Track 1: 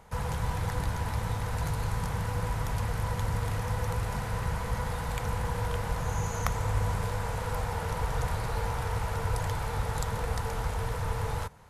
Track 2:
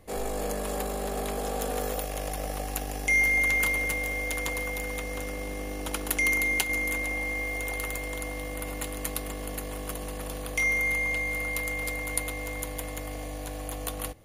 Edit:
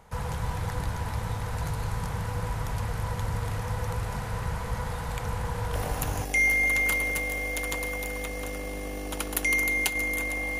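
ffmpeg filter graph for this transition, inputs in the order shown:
-filter_complex "[0:a]apad=whole_dur=10.59,atrim=end=10.59,atrim=end=6.25,asetpts=PTS-STARTPTS[a];[1:a]atrim=start=2.47:end=7.33,asetpts=PTS-STARTPTS[b];[a][b]acrossfade=d=0.52:c1=log:c2=log"

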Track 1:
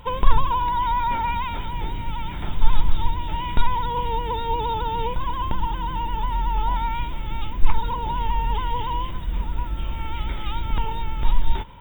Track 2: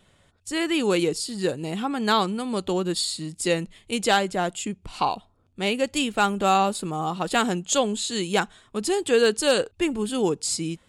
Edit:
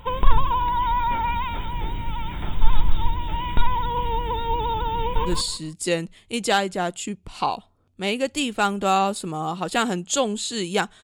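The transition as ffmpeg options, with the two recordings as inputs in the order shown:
-filter_complex "[0:a]apad=whole_dur=11.03,atrim=end=11.03,atrim=end=5.252[a];[1:a]atrim=start=2.838:end=8.62[b];[a][b]acrossfade=d=0.004:c1=hsin:c2=hsin,asplit=2[c][d];[d]afade=t=in:st=4.99:d=0.01,afade=t=out:st=5.25:d=0.01,aecho=0:1:160|320|480:0.891251|0.17825|0.03565[e];[c][e]amix=inputs=2:normalize=0"

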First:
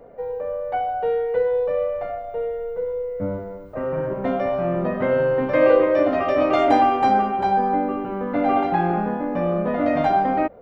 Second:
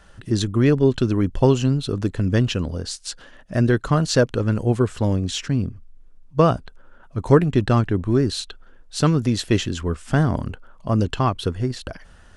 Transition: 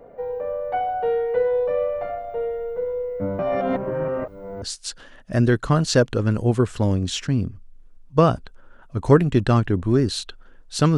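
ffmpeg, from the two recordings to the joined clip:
-filter_complex "[0:a]apad=whole_dur=10.97,atrim=end=10.97,asplit=2[a][b];[a]atrim=end=3.392[c];[b]atrim=start=3.388:end=4.622,asetpts=PTS-STARTPTS,areverse[d];[1:a]atrim=start=2.828:end=9.18[e];[c][d]acrossfade=d=0.004:c1=hsin:c2=hsin[f];[f][e]acrossfade=d=0.004:c1=hsin:c2=hsin"

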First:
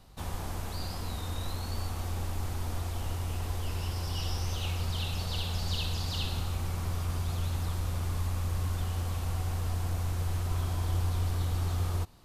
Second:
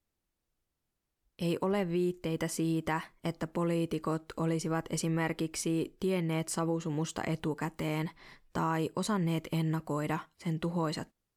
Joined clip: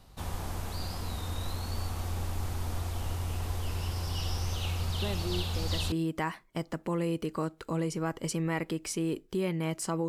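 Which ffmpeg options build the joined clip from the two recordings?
-filter_complex "[1:a]asplit=2[a][b];[0:a]apad=whole_dur=10.08,atrim=end=10.08,atrim=end=5.922[c];[b]atrim=start=2.608:end=6.77[d];[a]atrim=start=1.71:end=2.61,asetpts=PTS-STARTPTS,volume=-6dB,afade=t=in:d=0.004:c=hsin,afade=t=out:st=0.896:d=0.004:c=hsin,adelay=5020[e];[c][d]acrossfade=d=0.004:c1=hsin:c2=hsin[f];[f][e]amix=inputs=2:normalize=0"

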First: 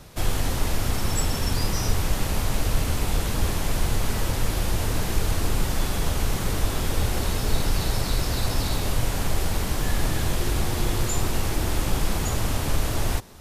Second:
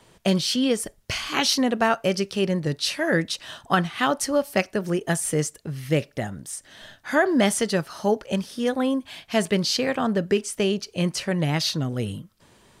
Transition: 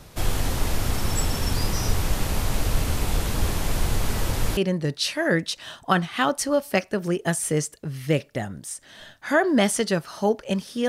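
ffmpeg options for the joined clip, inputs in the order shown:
-filter_complex "[0:a]apad=whole_dur=10.88,atrim=end=10.88,atrim=end=4.572[a];[1:a]atrim=start=2.388:end=8.7[b];[a][b]acrossfade=d=0.004:c1=hsin:c2=hsin"

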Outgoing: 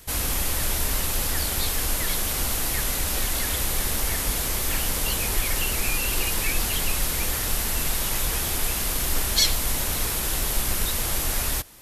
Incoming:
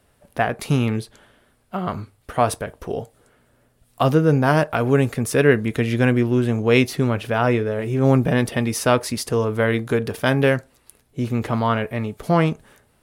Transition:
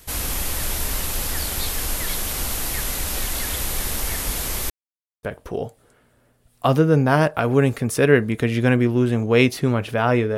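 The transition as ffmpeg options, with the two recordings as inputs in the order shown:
-filter_complex "[0:a]apad=whole_dur=10.37,atrim=end=10.37,asplit=2[a][b];[a]atrim=end=4.7,asetpts=PTS-STARTPTS,afade=t=out:st=4.696:d=0.004:c=hsin[c];[b]atrim=start=4.7:end=5.23,asetpts=PTS-STARTPTS,volume=0[d];[1:a]atrim=start=2.59:end=7.73,asetpts=PTS-STARTPTS,afade=t=in:d=0.004:c=hsin[e];[c][d][e]concat=n=3:v=0:a=1"

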